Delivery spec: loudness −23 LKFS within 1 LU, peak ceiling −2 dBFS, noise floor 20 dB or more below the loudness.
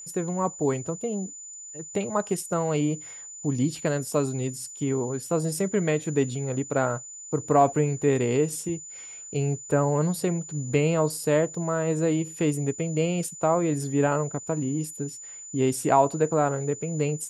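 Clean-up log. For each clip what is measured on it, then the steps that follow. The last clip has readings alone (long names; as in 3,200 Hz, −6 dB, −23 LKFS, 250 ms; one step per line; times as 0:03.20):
crackle rate 16 per second; interfering tone 7,000 Hz; level of the tone −39 dBFS; integrated loudness −26.0 LKFS; sample peak −6.5 dBFS; target loudness −23.0 LKFS
→ click removal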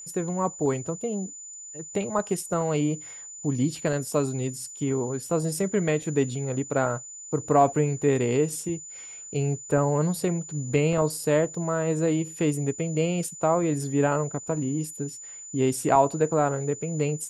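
crackle rate 0 per second; interfering tone 7,000 Hz; level of the tone −39 dBFS
→ notch filter 7,000 Hz, Q 30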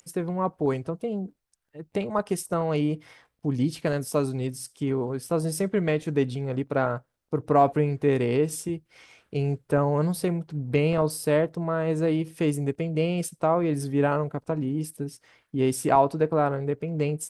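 interfering tone none found; integrated loudness −26.5 LKFS; sample peak −7.0 dBFS; target loudness −23.0 LKFS
→ level +3.5 dB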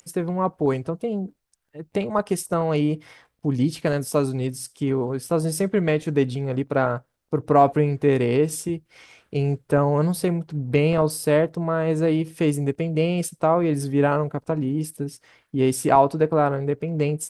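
integrated loudness −23.0 LKFS; sample peak −3.5 dBFS; background noise floor −72 dBFS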